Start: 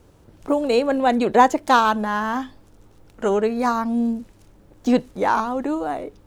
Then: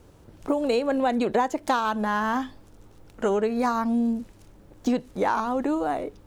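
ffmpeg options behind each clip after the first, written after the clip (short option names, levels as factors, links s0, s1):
-af "acompressor=threshold=0.1:ratio=6"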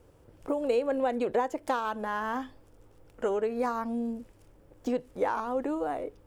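-af "equalizer=f=200:t=o:w=0.33:g=-7,equalizer=f=500:t=o:w=0.33:g=6,equalizer=f=4000:t=o:w=0.33:g=-6,equalizer=f=6300:t=o:w=0.33:g=-4,volume=0.473"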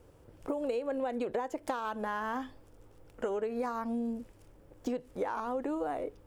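-af "acompressor=threshold=0.0316:ratio=6"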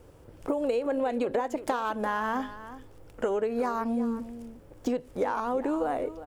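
-af "aecho=1:1:362:0.2,volume=1.88"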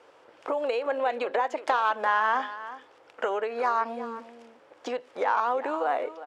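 -af "highpass=750,lowpass=4000,volume=2.37"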